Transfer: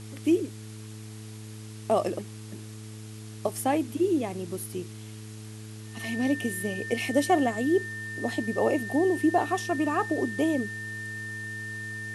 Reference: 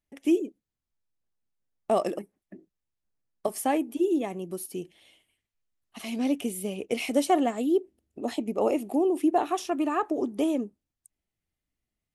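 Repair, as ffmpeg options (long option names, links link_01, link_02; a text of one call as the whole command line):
ffmpeg -i in.wav -af "bandreject=frequency=108.1:width_type=h:width=4,bandreject=frequency=216.2:width_type=h:width=4,bandreject=frequency=324.3:width_type=h:width=4,bandreject=frequency=432.4:width_type=h:width=4,bandreject=frequency=1800:width=30,afwtdn=0.0035" out.wav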